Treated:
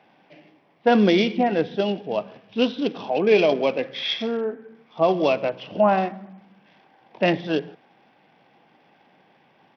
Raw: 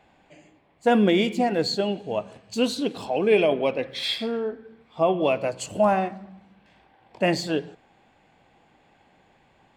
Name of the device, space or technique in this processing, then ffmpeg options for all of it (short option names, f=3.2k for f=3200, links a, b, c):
Bluetooth headset: -af "highpass=f=140:w=0.5412,highpass=f=140:w=1.3066,aresample=8000,aresample=44100,volume=2dB" -ar 44100 -c:a sbc -b:a 64k